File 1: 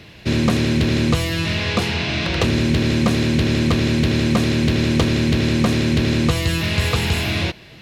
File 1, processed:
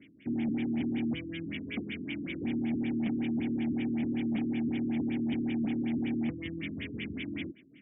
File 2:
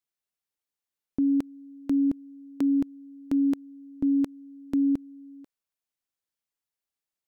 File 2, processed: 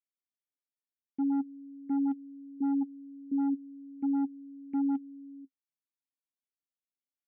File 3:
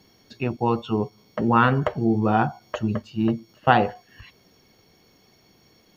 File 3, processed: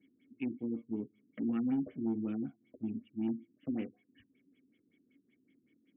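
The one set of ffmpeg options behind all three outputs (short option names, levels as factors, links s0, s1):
-filter_complex "[0:a]asplit=3[s0][s1][s2];[s0]bandpass=f=270:t=q:w=8,volume=1[s3];[s1]bandpass=f=2290:t=q:w=8,volume=0.501[s4];[s2]bandpass=f=3010:t=q:w=8,volume=0.355[s5];[s3][s4][s5]amix=inputs=3:normalize=0,asoftclip=type=tanh:threshold=0.0531,afftfilt=real='re*lt(b*sr/1024,390*pow(3700/390,0.5+0.5*sin(2*PI*5.3*pts/sr)))':imag='im*lt(b*sr/1024,390*pow(3700/390,0.5+0.5*sin(2*PI*5.3*pts/sr)))':win_size=1024:overlap=0.75"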